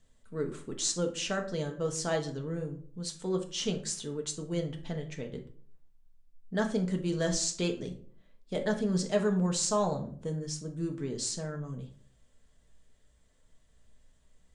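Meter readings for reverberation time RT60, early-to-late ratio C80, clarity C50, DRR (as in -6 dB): 0.50 s, 16.5 dB, 11.5 dB, 2.5 dB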